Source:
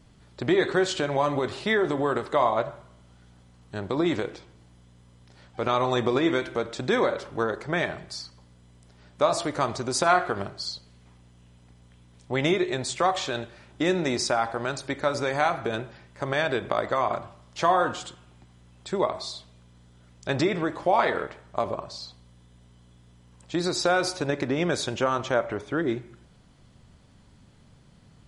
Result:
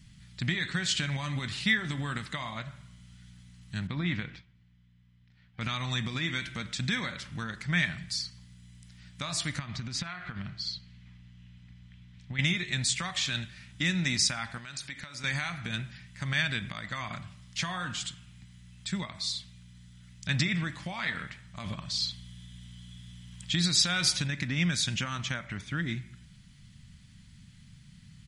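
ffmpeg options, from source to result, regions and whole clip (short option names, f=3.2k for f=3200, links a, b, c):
-filter_complex "[0:a]asettb=1/sr,asplit=3[a][b][c];[a]atrim=end=3.874[d];[b]atrim=start=3.87:end=5.61,asetpts=PTS-STARTPTS,afade=t=in:d=0.004:c=qsin,afade=t=out:st=1.736:d=0.004:c=qsin,lowpass=2.8k,agate=range=-10dB:threshold=-48dB:ratio=16:release=100:detection=peak[e];[c]atrim=start=5.606[f];[d][e]acrossfade=d=0.004:c1=hsin:c2=qsin[g];[g][f]acrossfade=d=0.004:c1=qsin:c2=hsin,asettb=1/sr,asplit=3[h][i][j];[h]atrim=end=9.594[k];[i]atrim=start=9.59:end=12.39,asetpts=PTS-STARTPTS,afade=t=in:d=0.004:c=qsin,afade=t=out:st=2.796:d=0.004:c=qsin,lowpass=3.5k,acompressor=threshold=-30dB:ratio=5:attack=3.2:release=140:knee=1:detection=peak[l];[j]atrim=start=12.386[m];[k][l]acrossfade=d=0.004:c1=hsin:c2=qsin[n];[n][m]acrossfade=d=0.004:c1=qsin:c2=hsin,asettb=1/sr,asplit=3[o][p][q];[o]atrim=end=14.584[r];[p]atrim=start=14.58:end=15.24,asetpts=PTS-STARTPTS,afade=t=in:d=0.004:c=qsin,afade=t=out:st=0.656:d=0.004:c=qsin,bass=f=250:g=-8,treble=f=4k:g=-1,acompressor=threshold=-35dB:ratio=5:attack=3.2:release=140:knee=1:detection=peak[s];[q]atrim=start=15.236[t];[r][s]acrossfade=d=0.004:c1=hsin:c2=qsin[u];[u][t]acrossfade=d=0.004:c1=qsin:c2=hsin,asettb=1/sr,asplit=3[v][w][x];[v]atrim=end=21.644[y];[w]atrim=start=21.64:end=24.28,asetpts=PTS-STARTPTS,afade=t=in:d=0.004:c=qsin,afade=t=out:st=2.636:d=0.004:c=qsin,equalizer=f=3.3k:t=o:w=0.22:g=8,acontrast=24[z];[x]atrim=start=24.276[aa];[y][z]acrossfade=d=0.004:c1=hsin:c2=qsin[ab];[ab][aa]acrossfade=d=0.004:c1=qsin:c2=hsin,equalizer=f=180:w=1.1:g=3.5,alimiter=limit=-15dB:level=0:latency=1:release=257,firequalizer=gain_entry='entry(180,0);entry(390,-24);entry(1900,3)':delay=0.05:min_phase=1,volume=1dB"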